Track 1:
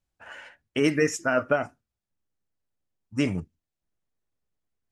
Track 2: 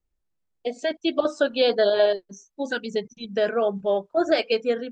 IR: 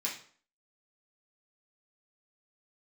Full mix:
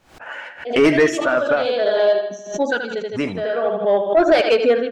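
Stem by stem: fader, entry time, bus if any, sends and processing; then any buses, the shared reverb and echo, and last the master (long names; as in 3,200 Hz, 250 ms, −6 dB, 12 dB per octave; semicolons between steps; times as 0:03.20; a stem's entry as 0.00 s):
0:00.96 −2.5 dB → 0:01.28 −12 dB, 0.00 s, no send, echo send −19.5 dB, no processing
−7.0 dB, 0.00 s, no send, echo send −12 dB, automatic ducking −14 dB, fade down 0.50 s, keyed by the first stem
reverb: not used
echo: repeating echo 79 ms, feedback 46%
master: automatic gain control gain up to 5 dB; mid-hump overdrive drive 23 dB, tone 1,300 Hz, clips at −1.5 dBFS; background raised ahead of every attack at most 120 dB per second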